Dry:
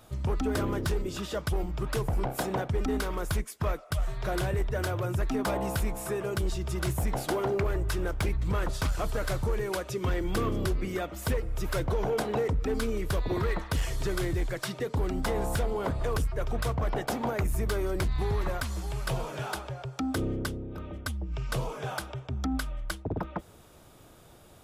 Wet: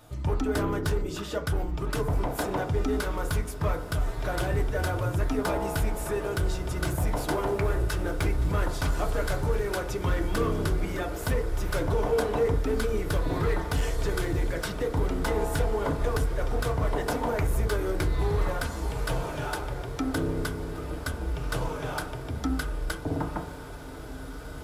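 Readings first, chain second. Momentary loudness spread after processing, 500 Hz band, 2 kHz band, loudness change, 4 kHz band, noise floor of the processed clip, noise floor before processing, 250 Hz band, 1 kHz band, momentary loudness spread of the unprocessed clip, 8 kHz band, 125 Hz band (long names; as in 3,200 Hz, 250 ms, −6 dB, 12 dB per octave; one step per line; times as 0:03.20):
6 LU, +2.5 dB, +2.5 dB, +2.0 dB, +1.0 dB, −38 dBFS, −53 dBFS, +1.5 dB, +2.5 dB, 5 LU, +1.0 dB, +2.0 dB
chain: on a send: feedback delay with all-pass diffusion 1,759 ms, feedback 71%, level −12.5 dB
on the sum: feedback delay network reverb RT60 0.45 s, low-frequency decay 1.05×, high-frequency decay 0.25×, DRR 3.5 dB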